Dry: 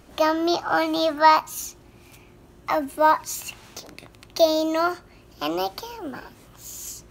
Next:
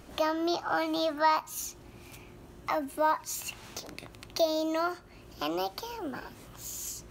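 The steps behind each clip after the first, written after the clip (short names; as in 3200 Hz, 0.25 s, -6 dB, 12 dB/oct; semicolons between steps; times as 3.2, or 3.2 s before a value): compressor 1.5:1, threshold -39 dBFS, peak gain reduction 10.5 dB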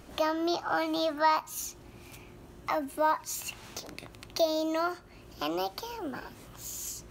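nothing audible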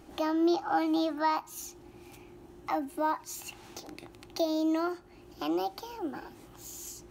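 small resonant body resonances 330/800 Hz, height 11 dB, ringing for 45 ms; gain -5 dB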